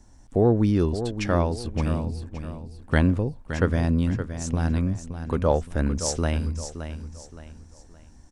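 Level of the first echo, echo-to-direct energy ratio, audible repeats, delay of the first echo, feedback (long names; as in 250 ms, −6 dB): −10.0 dB, −9.5 dB, 3, 569 ms, 35%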